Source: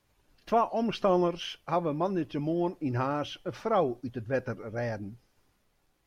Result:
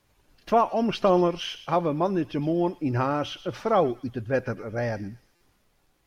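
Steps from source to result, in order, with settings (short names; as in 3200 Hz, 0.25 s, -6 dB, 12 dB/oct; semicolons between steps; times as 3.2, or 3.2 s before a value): thin delay 0.117 s, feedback 33%, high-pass 2200 Hz, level -11.5 dB; stuck buffer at 5.35, samples 256, times 9; gain +4.5 dB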